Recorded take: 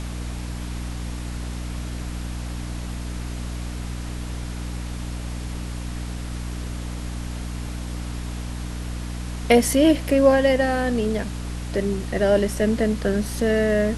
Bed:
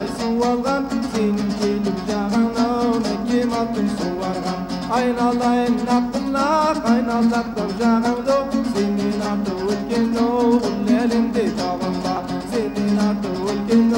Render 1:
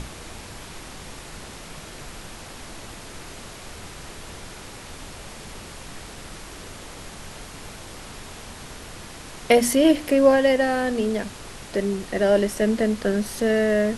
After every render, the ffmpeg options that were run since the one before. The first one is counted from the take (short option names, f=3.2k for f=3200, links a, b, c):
-af "bandreject=f=60:t=h:w=6,bandreject=f=120:t=h:w=6,bandreject=f=180:t=h:w=6,bandreject=f=240:t=h:w=6,bandreject=f=300:t=h:w=6"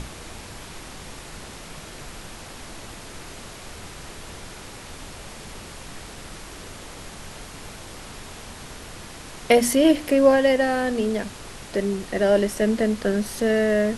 -af anull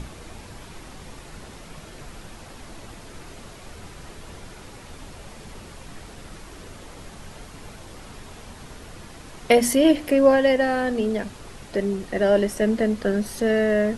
-af "afftdn=nr=6:nf=-40"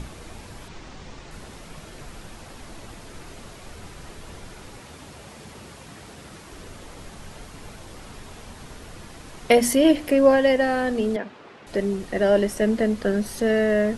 -filter_complex "[0:a]asettb=1/sr,asplit=3[a][b][c];[a]atrim=end=0.684[d];[b]atrim=start=0.68:end=1.31,asetpts=PTS-STARTPTS,afade=t=in:d=0.004:c=qsin,afade=t=out:st=0.626:d=0.004:c=qsin,lowpass=f=7.1k:w=0.5412,lowpass=f=7.1k:w=1.3066[e];[c]atrim=start=1.306[f];[d][e]acrossfade=d=0.004:c1=hsin:c2=qsin[g];[g][f]acrossfade=d=0.004:c1=qsin:c2=hsin,asettb=1/sr,asplit=3[h][i][j];[h]atrim=end=4.804[k];[i]atrim=start=4.8:end=6.52,asetpts=PTS-STARTPTS,afade=t=in:d=0.004:c=qsin,afade=t=out:st=1.716:d=0.004:c=qsin,highpass=76[l];[j]atrim=start=6.516[m];[k][l]acrossfade=d=0.004:c1=hsin:c2=qsin[n];[n][m]acrossfade=d=0.004:c1=qsin:c2=hsin,asettb=1/sr,asplit=3[o][p][q];[o]atrim=end=11.164[r];[p]atrim=start=11.16:end=11.67,asetpts=PTS-STARTPTS,afade=t=in:d=0.004:c=qsin,afade=t=out:st=0.506:d=0.004:c=qsin,highpass=260,lowpass=2.8k[s];[q]atrim=start=11.666[t];[r][s]acrossfade=d=0.004:c1=hsin:c2=qsin[u];[u][t]acrossfade=d=0.004:c1=qsin:c2=hsin"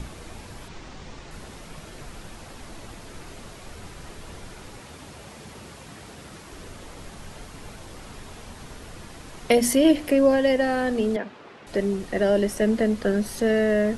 -filter_complex "[0:a]acrossover=split=490|3000[a][b][c];[b]acompressor=threshold=-23dB:ratio=6[d];[a][d][c]amix=inputs=3:normalize=0"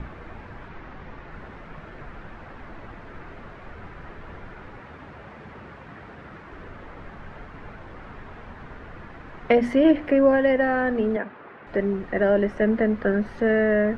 -af "lowpass=f=1.7k:t=q:w=1.6"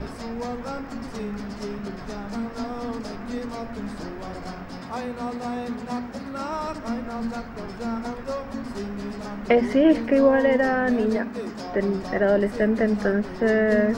-filter_complex "[1:a]volume=-12.5dB[a];[0:a][a]amix=inputs=2:normalize=0"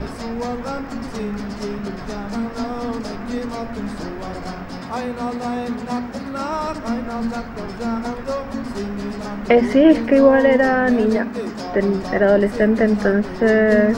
-af "volume=5.5dB,alimiter=limit=-2dB:level=0:latency=1"